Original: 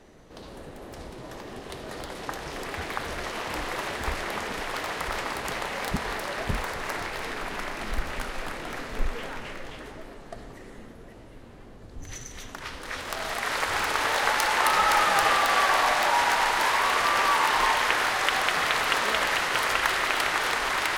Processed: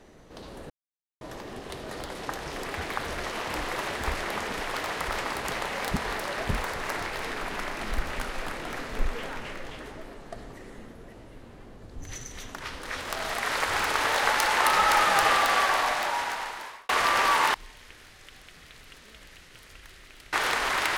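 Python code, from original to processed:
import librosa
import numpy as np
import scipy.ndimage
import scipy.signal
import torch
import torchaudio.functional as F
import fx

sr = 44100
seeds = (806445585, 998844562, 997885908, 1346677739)

y = fx.tone_stack(x, sr, knobs='10-0-1', at=(17.54, 20.33))
y = fx.edit(y, sr, fx.silence(start_s=0.7, length_s=0.51),
    fx.fade_out_span(start_s=15.4, length_s=1.49), tone=tone)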